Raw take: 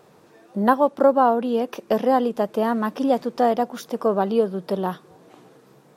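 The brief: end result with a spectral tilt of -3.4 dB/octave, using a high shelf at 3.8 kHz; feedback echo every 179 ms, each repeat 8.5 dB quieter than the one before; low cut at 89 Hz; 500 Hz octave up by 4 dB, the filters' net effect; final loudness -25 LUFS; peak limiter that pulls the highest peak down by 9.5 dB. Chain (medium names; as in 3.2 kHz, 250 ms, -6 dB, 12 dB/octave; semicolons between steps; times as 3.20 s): high-pass 89 Hz; peaking EQ 500 Hz +4.5 dB; treble shelf 3.8 kHz +4 dB; peak limiter -10.5 dBFS; feedback delay 179 ms, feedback 38%, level -8.5 dB; trim -4 dB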